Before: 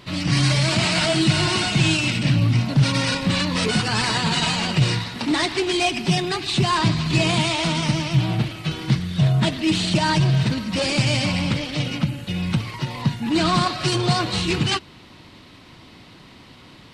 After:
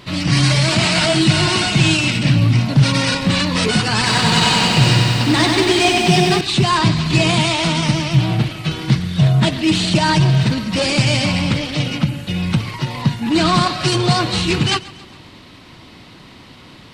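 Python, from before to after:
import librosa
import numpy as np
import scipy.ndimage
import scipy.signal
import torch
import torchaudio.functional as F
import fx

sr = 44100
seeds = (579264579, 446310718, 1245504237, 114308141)

y = fx.echo_feedback(x, sr, ms=136, feedback_pct=53, wet_db=-20.0)
y = fx.echo_crushed(y, sr, ms=94, feedback_pct=80, bits=8, wet_db=-4, at=(3.97, 6.41))
y = y * librosa.db_to_amplitude(4.5)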